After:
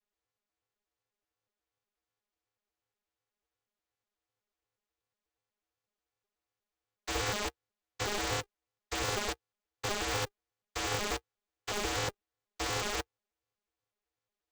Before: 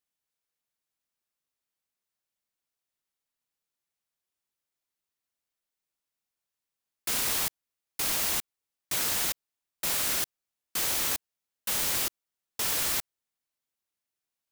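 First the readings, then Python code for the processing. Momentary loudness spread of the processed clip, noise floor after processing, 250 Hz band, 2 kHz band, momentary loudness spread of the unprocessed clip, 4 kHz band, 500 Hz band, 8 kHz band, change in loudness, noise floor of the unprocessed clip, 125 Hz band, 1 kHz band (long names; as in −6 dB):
9 LU, below −85 dBFS, +2.5 dB, −0.5 dB, 9 LU, −4.0 dB, +6.0 dB, −9.5 dB, −7.0 dB, below −85 dBFS, +6.5 dB, +3.0 dB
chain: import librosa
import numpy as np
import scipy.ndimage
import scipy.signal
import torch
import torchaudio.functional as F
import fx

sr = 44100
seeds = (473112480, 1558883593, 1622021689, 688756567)

y = fx.vocoder_arp(x, sr, chord='major triad', root=56, every_ms=122)
y = y * np.sign(np.sin(2.0 * np.pi * 200.0 * np.arange(len(y)) / sr))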